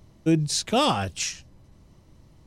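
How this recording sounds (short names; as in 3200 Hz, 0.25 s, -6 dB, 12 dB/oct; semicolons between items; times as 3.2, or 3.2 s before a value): noise floor -56 dBFS; spectral tilt -4.0 dB/oct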